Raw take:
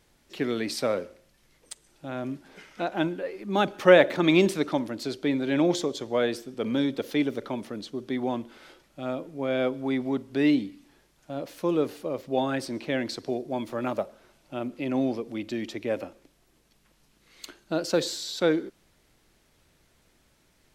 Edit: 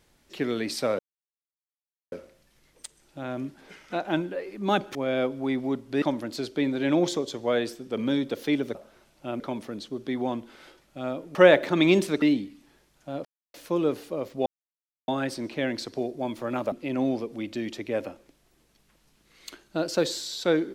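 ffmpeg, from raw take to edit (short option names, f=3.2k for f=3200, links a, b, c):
-filter_complex "[0:a]asplit=11[a][b][c][d][e][f][g][h][i][j][k];[a]atrim=end=0.99,asetpts=PTS-STARTPTS,afade=t=out:st=0.986:d=0.004:c=hsin,apad=pad_dur=1.13[l];[b]atrim=start=0.99:end=3.822,asetpts=PTS-STARTPTS,afade=t=in:d=0.004:c=hsin[m];[c]atrim=start=9.368:end=10.442[n];[d]atrim=start=4.688:end=7.422[o];[e]atrim=start=14.028:end=14.682[p];[f]atrim=start=7.418:end=9.372[q];[g]atrim=start=3.818:end=4.692[r];[h]atrim=start=10.438:end=11.47,asetpts=PTS-STARTPTS,afade=t=out:st=1.028:d=0.004:c=hsin,apad=pad_dur=0.29[s];[i]atrim=start=11.47:end=12.39,asetpts=PTS-STARTPTS,afade=t=in:d=0.004:c=hsin,afade=t=out:st=0.916:d=0.004:c=hsin,apad=pad_dur=0.62[t];[j]atrim=start=12.39:end=14.032,asetpts=PTS-STARTPTS,afade=t=in:d=0.004:c=hsin[u];[k]atrim=start=14.678[v];[l][m]concat=n=2:v=0:a=1[w];[w][n]acrossfade=d=0.004:c1=hsin:c2=hsin[x];[x][o]acrossfade=d=0.004:c1=hsin:c2=hsin[y];[y][p]acrossfade=d=0.004:c1=hsin:c2=hsin[z];[z][q]acrossfade=d=0.004:c1=hsin:c2=hsin[aa];[aa][r]acrossfade=d=0.004:c1=hsin:c2=hsin[ab];[s][t][u]concat=n=3:v=0:a=1[ac];[ab][ac]acrossfade=d=0.004:c1=hsin:c2=hsin[ad];[ad][v]acrossfade=d=0.004:c1=hsin:c2=hsin"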